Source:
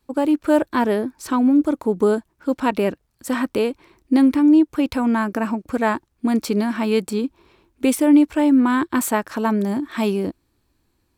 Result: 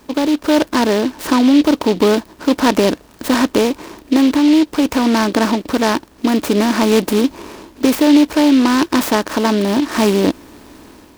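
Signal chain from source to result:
compressor on every frequency bin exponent 0.6
automatic gain control
short delay modulated by noise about 3,100 Hz, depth 0.059 ms
level −1 dB

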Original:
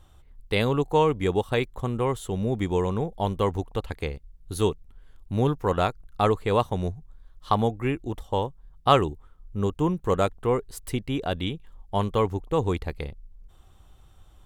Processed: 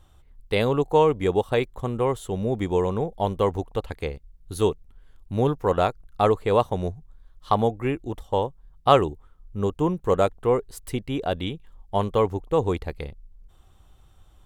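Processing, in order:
dynamic equaliser 570 Hz, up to +5 dB, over −35 dBFS, Q 0.96
level −1 dB

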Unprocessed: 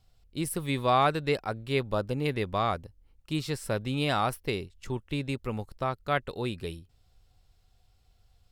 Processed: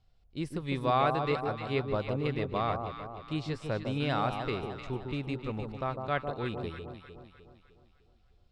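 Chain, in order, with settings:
high-frequency loss of the air 120 metres
on a send: delay that swaps between a low-pass and a high-pass 152 ms, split 1,100 Hz, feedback 68%, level −5 dB
on the sum: level −3 dB

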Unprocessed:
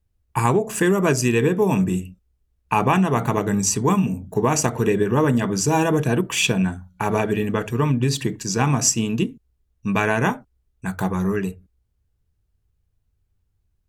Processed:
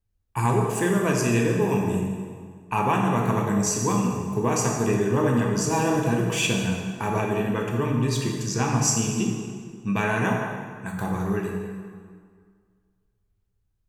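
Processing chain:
dense smooth reverb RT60 1.9 s, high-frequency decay 0.75×, DRR −0.5 dB
level −6.5 dB

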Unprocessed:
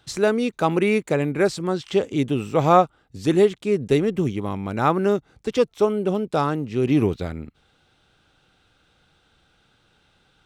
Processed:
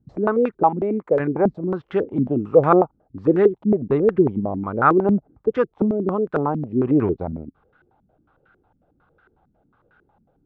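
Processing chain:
0:00.63–0:01.20: low-shelf EQ 300 Hz −8 dB
low-pass on a step sequencer 11 Hz 220–1,500 Hz
level −2 dB

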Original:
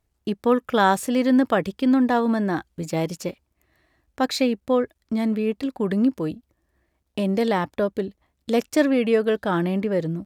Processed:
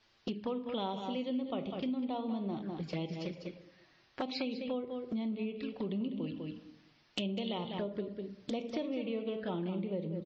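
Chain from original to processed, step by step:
parametric band 3,000 Hz +6 dB 0.52 octaves, from 0:05.92 +14 dB, from 0:07.58 +2.5 dB
convolution reverb RT60 0.65 s, pre-delay 5 ms, DRR 8 dB
bit-depth reduction 10 bits, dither triangular
Chebyshev low-pass filter 5,000 Hz, order 4
flanger swept by the level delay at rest 9.1 ms, full sweep at −20 dBFS
low-shelf EQ 100 Hz −3.5 dB
single-tap delay 199 ms −9.5 dB
downward compressor 4 to 1, threshold −36 dBFS, peak gain reduction 18.5 dB
MP3 32 kbit/s 22,050 Hz

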